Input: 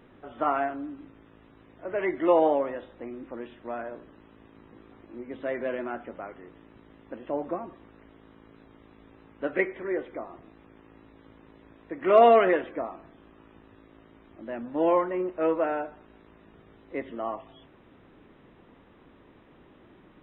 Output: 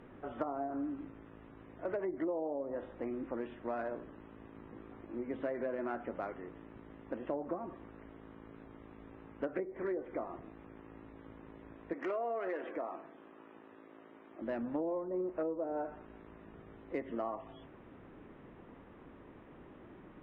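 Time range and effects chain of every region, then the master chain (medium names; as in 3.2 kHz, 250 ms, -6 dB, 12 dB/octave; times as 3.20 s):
11.93–14.42 s: high-pass 290 Hz + compression 2:1, threshold -38 dBFS
whole clip: local Wiener filter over 9 samples; low-pass that closes with the level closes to 580 Hz, closed at -23.5 dBFS; compression 10:1, threshold -34 dBFS; trim +1 dB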